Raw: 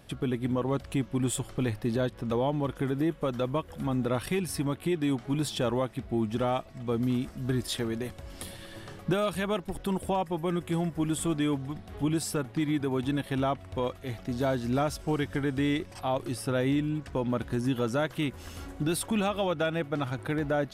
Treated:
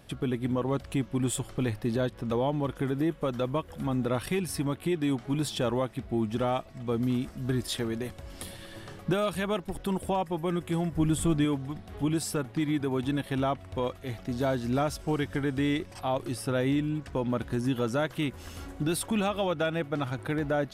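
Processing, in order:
0:10.92–0:11.45: low-shelf EQ 150 Hz +11.5 dB

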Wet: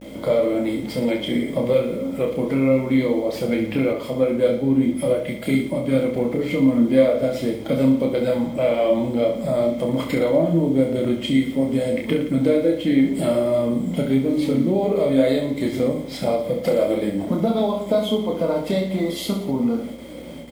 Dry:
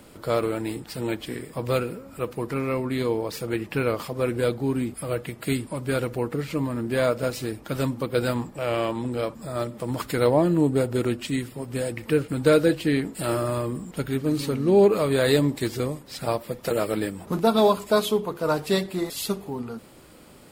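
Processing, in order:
spectral magnitudes quantised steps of 15 dB
noise gate with hold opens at −40 dBFS
mains-hum notches 50/100/150/200/250/300/350/400 Hz
downward compressor 4 to 1, threshold −32 dBFS, peak gain reduction 15.5 dB
bit reduction 9 bits
hollow resonant body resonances 250/540/2,100/3,200 Hz, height 17 dB, ringing for 20 ms
hum with harmonics 60 Hz, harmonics 9, −51 dBFS −4 dB per octave
flanger 1.1 Hz, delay 9 ms, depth 3.8 ms, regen +67%
reverse bouncing-ball delay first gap 30 ms, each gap 1.25×, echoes 5
0:03.93–0:06.16: multiband upward and downward expander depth 40%
level +3.5 dB

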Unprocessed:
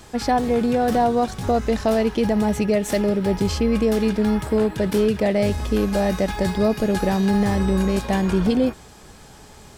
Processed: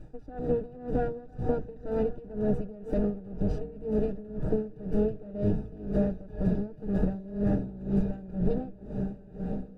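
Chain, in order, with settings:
lower of the sound and its delayed copy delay 6.5 ms
low-shelf EQ 97 Hz +10 dB
on a send: feedback delay with all-pass diffusion 1,130 ms, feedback 57%, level −10 dB
on the sum: downward compressor, threshold −18 dBFS, peak gain reduction 5 dB
moving average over 41 samples
tremolo with a sine in dB 2 Hz, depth 20 dB

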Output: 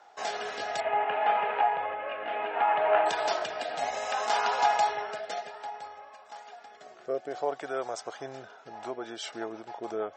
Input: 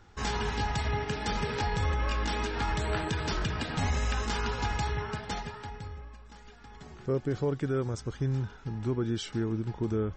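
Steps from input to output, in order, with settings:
0:00.80–0:03.06: elliptic low-pass filter 2,800 Hz, stop band 80 dB
rotating-speaker cabinet horn 0.6 Hz, later 6.7 Hz, at 0:08.43
high-pass with resonance 680 Hz, resonance Q 7.1
level +3.5 dB

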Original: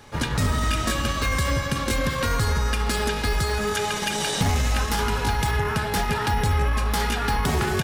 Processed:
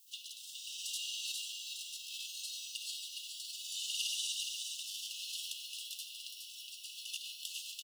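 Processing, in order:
brickwall limiter −20.5 dBFS, peak gain reduction 9.5 dB
granular cloud 100 ms, grains 20 per second, pitch spread up and down by 0 semitones
rotating-speaker cabinet horn 0.7 Hz, later 7.5 Hz, at 0:06.41
background noise blue −62 dBFS
linear-phase brick-wall high-pass 2,600 Hz
single-tap delay 416 ms −5 dB
convolution reverb RT60 3.0 s, pre-delay 4 ms, DRR 6 dB
level −1 dB

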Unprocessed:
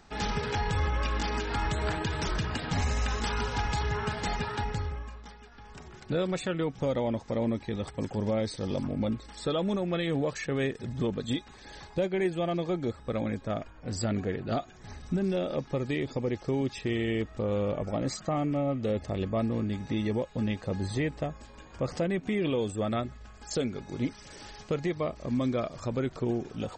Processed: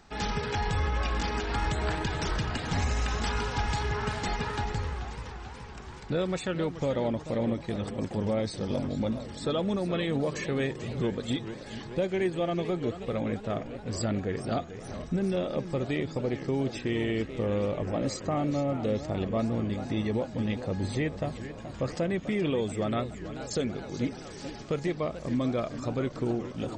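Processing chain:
feedback echo with a swinging delay time 432 ms, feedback 69%, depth 218 cents, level −12 dB

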